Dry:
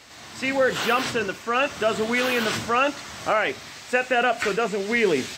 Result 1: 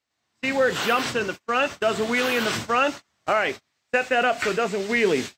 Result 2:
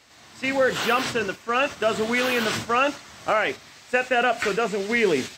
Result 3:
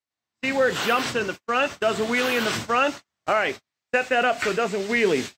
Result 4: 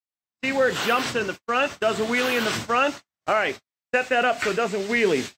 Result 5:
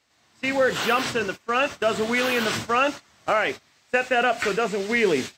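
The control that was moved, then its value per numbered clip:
gate, range: -34 dB, -7 dB, -46 dB, -59 dB, -20 dB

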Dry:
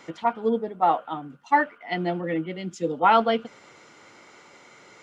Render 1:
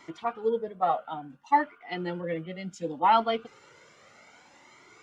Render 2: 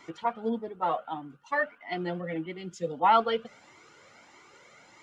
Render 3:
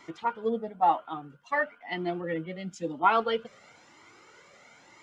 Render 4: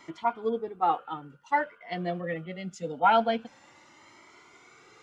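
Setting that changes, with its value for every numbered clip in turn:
Shepard-style flanger, rate: 0.63 Hz, 1.6 Hz, 1 Hz, 0.24 Hz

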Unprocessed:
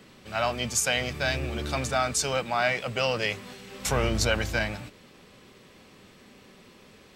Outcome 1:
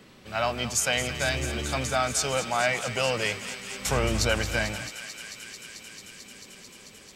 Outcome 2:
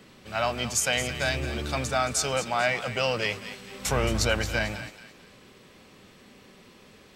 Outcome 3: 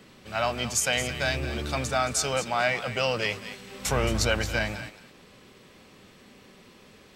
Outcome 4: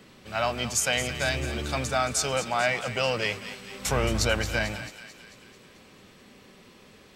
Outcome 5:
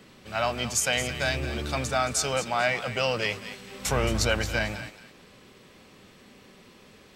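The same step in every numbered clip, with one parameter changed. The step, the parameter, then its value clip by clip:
thinning echo, feedback: 90%, 38%, 15%, 60%, 26%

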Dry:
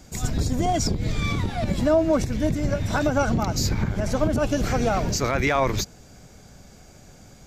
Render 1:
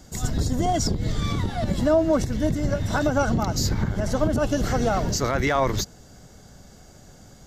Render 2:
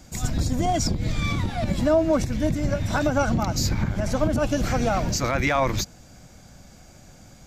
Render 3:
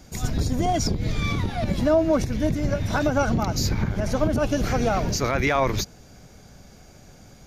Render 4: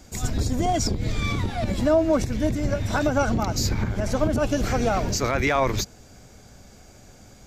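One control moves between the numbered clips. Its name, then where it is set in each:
band-stop, frequency: 2.4 kHz, 420 Hz, 7.7 kHz, 160 Hz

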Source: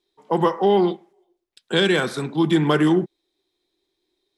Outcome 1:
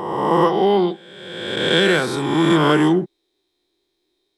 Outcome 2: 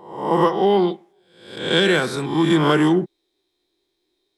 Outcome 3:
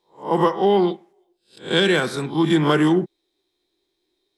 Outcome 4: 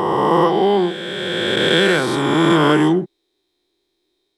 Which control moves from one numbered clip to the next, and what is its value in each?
reverse spectral sustain, rising 60 dB in: 1.5 s, 0.66 s, 0.31 s, 3.2 s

